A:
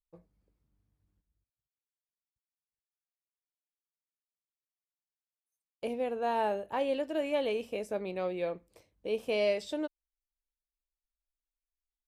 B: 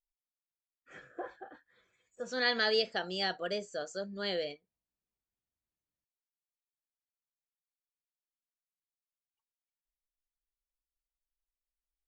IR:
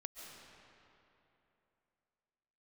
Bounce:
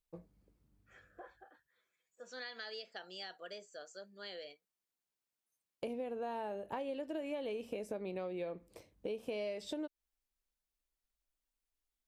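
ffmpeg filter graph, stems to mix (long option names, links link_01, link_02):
-filter_complex "[0:a]equalizer=frequency=260:width_type=o:width=2:gain=4,acompressor=threshold=-37dB:ratio=6,volume=2.5dB[link_01];[1:a]highpass=frequency=520:poles=1,acompressor=threshold=-32dB:ratio=6,volume=-9dB[link_02];[link_01][link_02]amix=inputs=2:normalize=0,acompressor=threshold=-42dB:ratio=1.5"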